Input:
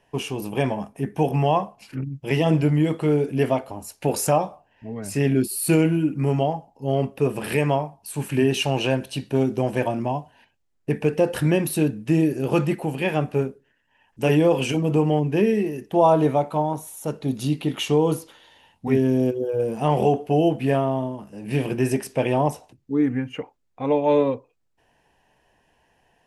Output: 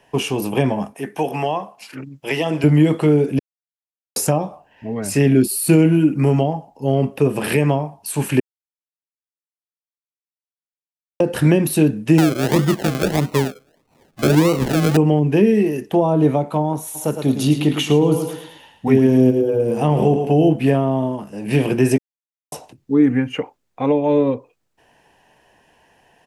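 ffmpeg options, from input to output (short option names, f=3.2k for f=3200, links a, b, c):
-filter_complex "[0:a]asettb=1/sr,asplit=3[a][b][c];[a]atrim=end=0.944[d];[b]atrim=start=0.94:end=2.64,asetpts=PTS-STARTPTS,afade=t=in:d=0.004:c=qsin,afade=t=out:st=1.696:d=0.004:c=qsin,highpass=f=650:p=1[e];[c]atrim=start=2.636[f];[d][e]acrossfade=d=0.004:c1=hsin:c2=qsin[g];[g][f]acrossfade=d=0.004:c1=qsin:c2=hsin,asettb=1/sr,asplit=3[h][i][j];[h]atrim=end=12.184[k];[i]atrim=start=12.18:end=14.97,asetpts=PTS-STARTPTS,afade=t=in:d=0.004:c=qsin,afade=t=out:st=2.786:d=0.004:c=qsin,acrusher=samples=37:mix=1:aa=0.000001:lfo=1:lforange=22.2:lforate=1.6[l];[j]atrim=start=14.966[m];[k][l]acrossfade=d=0.004:c1=hsin:c2=qsin[n];[n][m]acrossfade=d=0.004:c1=qsin:c2=hsin,asplit=3[o][p][q];[o]afade=t=out:st=16.94:d=0.02[r];[p]aecho=1:1:109|218|327|436:0.355|0.131|0.0486|0.018,afade=t=in:st=16.94:d=0.02,afade=t=out:st=20.52:d=0.02[s];[q]afade=t=in:st=20.52:d=0.02[t];[r][s][t]amix=inputs=3:normalize=0,asplit=7[u][v][w][x][y][z][aa];[u]atrim=end=3.39,asetpts=PTS-STARTPTS,afade=t=out:st=3.386:d=0.004:c=hsin[ab];[v]atrim=start=3.39:end=4.16,asetpts=PTS-STARTPTS,volume=0[ac];[w]atrim=start=4.16:end=8.4,asetpts=PTS-STARTPTS,afade=t=in:d=0.004:c=hsin,afade=t=out:st=4.236:d=0.004:c=hsin[ad];[x]atrim=start=8.4:end=11.2,asetpts=PTS-STARTPTS,volume=0[ae];[y]atrim=start=11.2:end=21.98,asetpts=PTS-STARTPTS,afade=t=in:d=0.004:c=hsin,afade=t=out:st=10.776:d=0.004:c=hsin[af];[z]atrim=start=21.98:end=22.52,asetpts=PTS-STARTPTS,volume=0[ag];[aa]atrim=start=22.52,asetpts=PTS-STARTPTS,afade=t=in:d=0.004:c=hsin[ah];[ab][ac][ad][ae][af][ag][ah]concat=n=7:v=0:a=1,lowshelf=f=82:g=-10,acrossover=split=360[ai][aj];[aj]acompressor=threshold=-28dB:ratio=10[ak];[ai][ak]amix=inputs=2:normalize=0,volume=8.5dB"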